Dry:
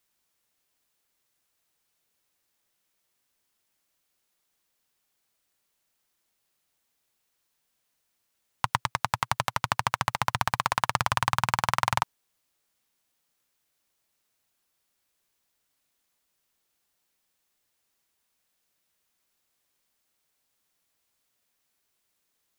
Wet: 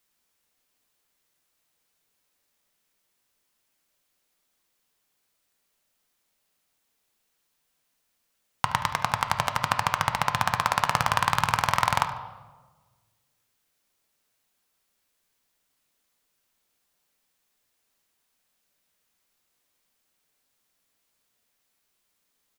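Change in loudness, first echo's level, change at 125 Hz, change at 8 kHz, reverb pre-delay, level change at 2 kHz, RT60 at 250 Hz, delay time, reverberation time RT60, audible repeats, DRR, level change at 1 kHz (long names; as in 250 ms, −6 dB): +2.5 dB, −15.0 dB, +1.5 dB, +1.5 dB, 4 ms, +2.0 dB, 1.5 s, 73 ms, 1.3 s, 1, 6.5 dB, +2.5 dB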